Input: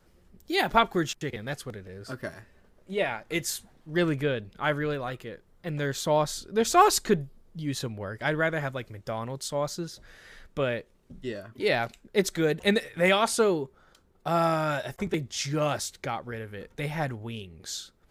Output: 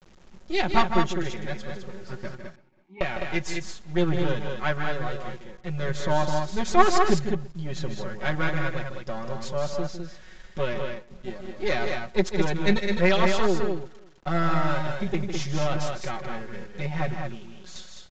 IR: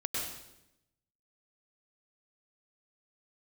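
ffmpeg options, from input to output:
-filter_complex "[0:a]aeval=exprs='if(lt(val(0),0),0.251*val(0),val(0))':c=same,bass=f=250:g=4,treble=f=4k:g=-4,aecho=1:1:5.4:0.94,asettb=1/sr,asplit=3[a][b][c];[a]atrim=end=17.144[d];[b]atrim=start=17.14:end=17.76,asetpts=PTS-STARTPTS,afade=t=in:d=0.004:c=qsin,afade=t=out:st=0.616:d=0.004:c=qsin,acompressor=threshold=-44dB:ratio=2[e];[c]atrim=start=17.756[f];[d][e]acrossfade=d=0.004:c1=hsin:c2=qsin[g];[g][f]acrossfade=d=0.004:c1=qsin:c2=hsin,acrusher=bits=8:mix=0:aa=0.000001,asettb=1/sr,asplit=3[h][i][j];[h]atrim=end=2.354[k];[i]atrim=start=2.35:end=3.01,asetpts=PTS-STARTPTS,afade=t=in:d=0.004:c=qsin,afade=t=out:st=0.656:d=0.004:c=qsin,asplit=3[l][m][n];[l]bandpass=f=300:t=q:w=8,volume=0dB[o];[m]bandpass=f=870:t=q:w=8,volume=-6dB[p];[n]bandpass=f=2.24k:t=q:w=8,volume=-9dB[q];[o][p][q]amix=inputs=3:normalize=0[r];[j]atrim=start=3.006[s];[k][r]acrossfade=d=0.004:c1=hsin:c2=qsin[t];[t][s]acrossfade=d=0.004:c1=qsin:c2=hsin,asettb=1/sr,asplit=3[u][v][w];[u]atrim=end=10.734[x];[v]atrim=start=10.73:end=11.58,asetpts=PTS-STARTPTS,afade=t=in:d=0.004:c=qsin,afade=t=out:st=0.846:d=0.004:c=qsin,tremolo=f=190:d=0.462[y];[w]atrim=start=11.576[z];[x][y]acrossfade=d=0.004:c1=hsin:c2=qsin[aa];[aa][z]acrossfade=d=0.004:c1=qsin:c2=hsin,asplit=2[ab][ac];[ac]aecho=0:1:154.5|207:0.355|0.562[ad];[ab][ad]amix=inputs=2:normalize=0,aresample=16000,aresample=44100,asplit=2[ae][af];[af]adelay=332.4,volume=-25dB,highshelf=f=4k:g=-7.48[ag];[ae][ag]amix=inputs=2:normalize=0,volume=-1dB"

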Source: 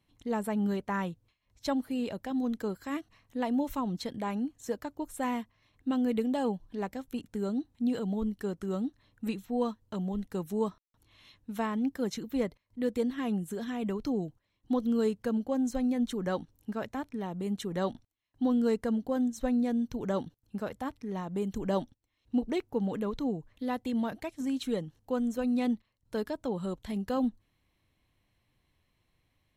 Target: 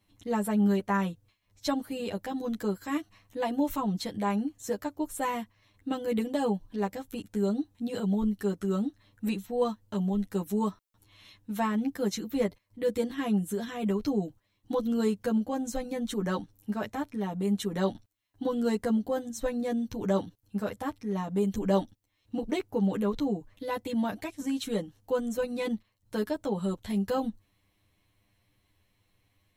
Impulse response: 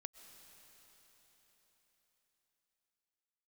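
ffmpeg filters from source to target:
-filter_complex "[0:a]highshelf=f=6.6k:g=5,asplit=2[a][b];[1:a]atrim=start_sample=2205,atrim=end_sample=3528,adelay=10[c];[b][c]afir=irnorm=-1:irlink=0,volume=5dB[d];[a][d]amix=inputs=2:normalize=0"

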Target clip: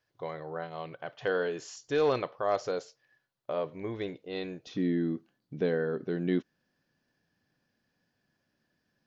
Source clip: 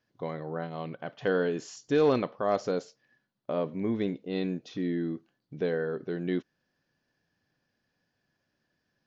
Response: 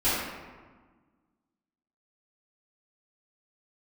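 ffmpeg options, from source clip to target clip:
-af "asetnsamples=n=441:p=0,asendcmd='4.67 equalizer g 3',equalizer=f=220:w=1.6:g=-14.5"

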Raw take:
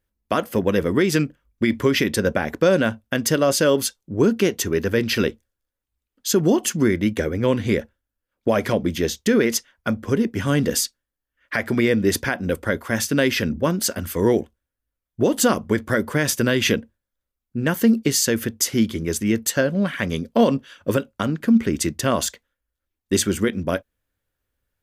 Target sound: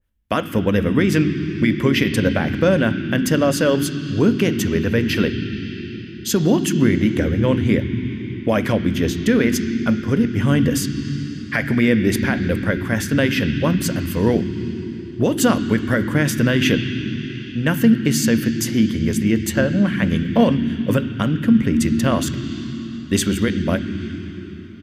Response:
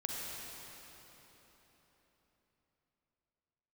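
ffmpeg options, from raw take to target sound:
-filter_complex "[0:a]asplit=2[a][b];[b]firequalizer=gain_entry='entry(350,0);entry(500,-29);entry(1500,-2);entry(3000,8);entry(11000,-26)':delay=0.05:min_phase=1[c];[1:a]atrim=start_sample=2205,lowshelf=f=88:g=8.5,highshelf=f=2.4k:g=-9.5[d];[c][d]afir=irnorm=-1:irlink=0,volume=-2dB[e];[a][e]amix=inputs=2:normalize=0,adynamicequalizer=threshold=0.02:dfrequency=1700:dqfactor=0.7:tfrequency=1700:tqfactor=0.7:attack=5:release=100:ratio=0.375:range=2:mode=cutabove:tftype=highshelf"

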